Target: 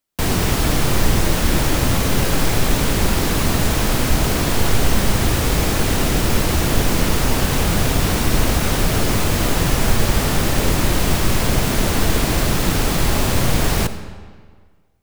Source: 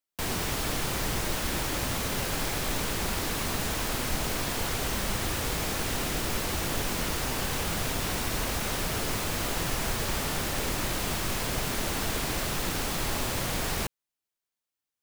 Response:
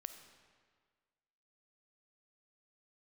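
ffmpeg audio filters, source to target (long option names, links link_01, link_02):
-filter_complex "[0:a]asplit=2[link_01][link_02];[1:a]atrim=start_sample=2205,lowshelf=frequency=450:gain=9.5[link_03];[link_02][link_03]afir=irnorm=-1:irlink=0,volume=10.5dB[link_04];[link_01][link_04]amix=inputs=2:normalize=0,volume=-1dB"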